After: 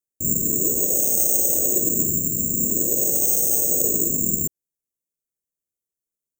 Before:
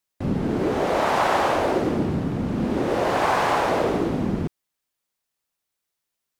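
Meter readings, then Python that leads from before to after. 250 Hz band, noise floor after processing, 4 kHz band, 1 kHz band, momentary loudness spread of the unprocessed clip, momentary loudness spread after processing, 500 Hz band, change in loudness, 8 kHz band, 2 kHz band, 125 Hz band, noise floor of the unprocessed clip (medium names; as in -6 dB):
-5.5 dB, under -85 dBFS, under -10 dB, under -25 dB, 6 LU, 4 LU, -8.0 dB, +5.0 dB, +24.5 dB, under -40 dB, -5.5 dB, -82 dBFS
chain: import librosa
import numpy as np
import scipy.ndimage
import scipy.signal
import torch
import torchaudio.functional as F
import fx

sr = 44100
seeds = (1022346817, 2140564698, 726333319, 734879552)

y = (np.kron(scipy.signal.resample_poly(x, 1, 6), np.eye(6)[0]) * 6)[:len(x)]
y = scipy.signal.sosfilt(scipy.signal.cheby2(4, 40, [920.0, 3900.0], 'bandstop', fs=sr, output='sos'), y)
y = y * 10.0 ** (-5.5 / 20.0)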